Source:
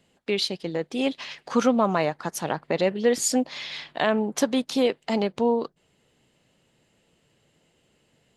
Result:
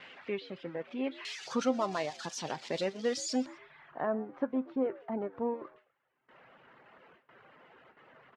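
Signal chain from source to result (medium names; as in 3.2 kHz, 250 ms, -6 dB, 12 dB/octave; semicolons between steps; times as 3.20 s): zero-crossing glitches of -16 dBFS; reverb removal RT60 0.97 s; low-pass 2.4 kHz 24 dB/octave, from 1.25 s 5.6 kHz, from 3.46 s 1.5 kHz; gate with hold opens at -40 dBFS; feedback comb 130 Hz, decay 0.19 s, harmonics all, mix 50%; frequency-shifting echo 124 ms, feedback 31%, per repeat +75 Hz, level -21 dB; trim -5.5 dB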